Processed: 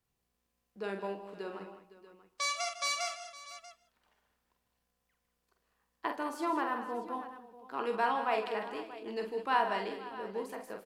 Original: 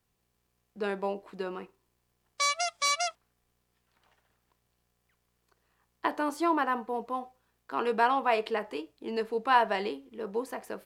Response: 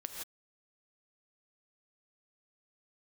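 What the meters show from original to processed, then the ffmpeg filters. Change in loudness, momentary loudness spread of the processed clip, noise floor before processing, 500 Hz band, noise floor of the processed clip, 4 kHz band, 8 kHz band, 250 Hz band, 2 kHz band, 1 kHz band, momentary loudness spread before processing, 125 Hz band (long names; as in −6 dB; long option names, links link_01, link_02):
−5.0 dB, 16 LU, −77 dBFS, −5.0 dB, −82 dBFS, −4.5 dB, −5.0 dB, −5.5 dB, −4.5 dB, −5.0 dB, 13 LU, can't be measured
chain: -filter_complex "[0:a]aecho=1:1:46|154|204|511|638:0.473|0.211|0.237|0.133|0.158,asplit=2[link_01][link_02];[1:a]atrim=start_sample=2205[link_03];[link_02][link_03]afir=irnorm=-1:irlink=0,volume=-10dB[link_04];[link_01][link_04]amix=inputs=2:normalize=0,volume=-8dB"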